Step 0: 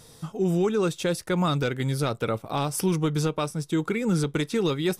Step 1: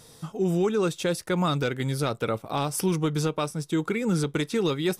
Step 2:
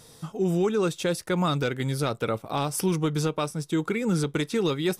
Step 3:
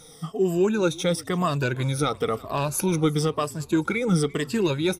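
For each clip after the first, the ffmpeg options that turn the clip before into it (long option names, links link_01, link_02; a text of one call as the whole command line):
ffmpeg -i in.wav -af "lowshelf=frequency=91:gain=-5.5" out.wav
ffmpeg -i in.wav -af anull out.wav
ffmpeg -i in.wav -filter_complex "[0:a]afftfilt=real='re*pow(10,14/40*sin(2*PI*(1.4*log(max(b,1)*sr/1024/100)/log(2)-(-1)*(pts-256)/sr)))':imag='im*pow(10,14/40*sin(2*PI*(1.4*log(max(b,1)*sr/1024/100)/log(2)-(-1)*(pts-256)/sr)))':win_size=1024:overlap=0.75,asplit=5[link_01][link_02][link_03][link_04][link_05];[link_02]adelay=344,afreqshift=-37,volume=-22.5dB[link_06];[link_03]adelay=688,afreqshift=-74,volume=-27.7dB[link_07];[link_04]adelay=1032,afreqshift=-111,volume=-32.9dB[link_08];[link_05]adelay=1376,afreqshift=-148,volume=-38.1dB[link_09];[link_01][link_06][link_07][link_08][link_09]amix=inputs=5:normalize=0" out.wav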